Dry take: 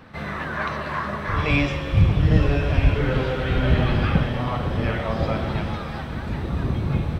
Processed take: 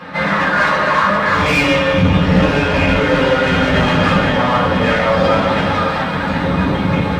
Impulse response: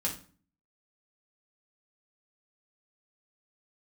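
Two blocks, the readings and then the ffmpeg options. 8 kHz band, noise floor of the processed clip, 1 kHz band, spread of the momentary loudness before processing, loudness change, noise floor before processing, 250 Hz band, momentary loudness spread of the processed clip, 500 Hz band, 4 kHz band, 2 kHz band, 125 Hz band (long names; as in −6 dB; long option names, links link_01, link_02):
can't be measured, −19 dBFS, +14.0 dB, 10 LU, +9.0 dB, −31 dBFS, +9.5 dB, 4 LU, +12.0 dB, +13.0 dB, +13.5 dB, +2.5 dB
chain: -filter_complex "[0:a]aeval=exprs='clip(val(0),-1,0.0596)':channel_layout=same,asplit=2[link_01][link_02];[link_02]highpass=frequency=720:poles=1,volume=25dB,asoftclip=type=tanh:threshold=-5dB[link_03];[link_01][link_03]amix=inputs=2:normalize=0,lowpass=frequency=2800:poles=1,volume=-6dB[link_04];[1:a]atrim=start_sample=2205[link_05];[link_04][link_05]afir=irnorm=-1:irlink=0,volume=-3dB"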